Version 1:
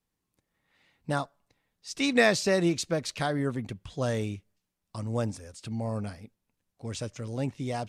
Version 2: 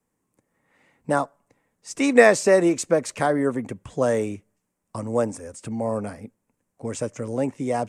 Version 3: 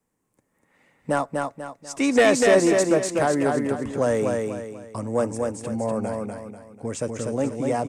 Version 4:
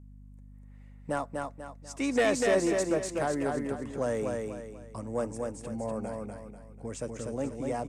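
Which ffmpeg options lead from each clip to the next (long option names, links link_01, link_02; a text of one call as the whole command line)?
ffmpeg -i in.wav -filter_complex "[0:a]equalizer=frequency=125:width_type=o:width=1:gain=5,equalizer=frequency=250:width_type=o:width=1:gain=9,equalizer=frequency=500:width_type=o:width=1:gain=9,equalizer=frequency=1000:width_type=o:width=1:gain=7,equalizer=frequency=2000:width_type=o:width=1:gain=6,equalizer=frequency=4000:width_type=o:width=1:gain=-9,equalizer=frequency=8000:width_type=o:width=1:gain=11,acrossover=split=280|1800[link_01][link_02][link_03];[link_01]acompressor=threshold=-31dB:ratio=6[link_04];[link_04][link_02][link_03]amix=inputs=3:normalize=0,volume=-1dB" out.wav
ffmpeg -i in.wav -af "asoftclip=type=tanh:threshold=-10dB,aecho=1:1:245|490|735|980|1225:0.668|0.247|0.0915|0.0339|0.0125" out.wav
ffmpeg -i in.wav -af "aeval=exprs='val(0)+0.01*(sin(2*PI*50*n/s)+sin(2*PI*2*50*n/s)/2+sin(2*PI*3*50*n/s)/3+sin(2*PI*4*50*n/s)/4+sin(2*PI*5*50*n/s)/5)':channel_layout=same,volume=-8.5dB" out.wav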